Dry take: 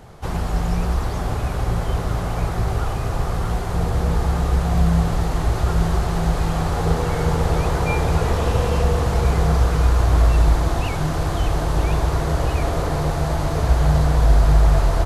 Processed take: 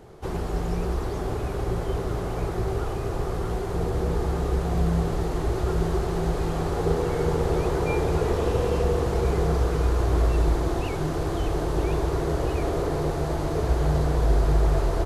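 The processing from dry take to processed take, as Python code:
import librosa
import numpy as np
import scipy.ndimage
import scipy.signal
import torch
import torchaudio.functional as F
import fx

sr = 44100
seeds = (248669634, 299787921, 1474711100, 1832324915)

y = fx.peak_eq(x, sr, hz=380.0, db=11.5, octaves=0.75)
y = y * 10.0 ** (-7.0 / 20.0)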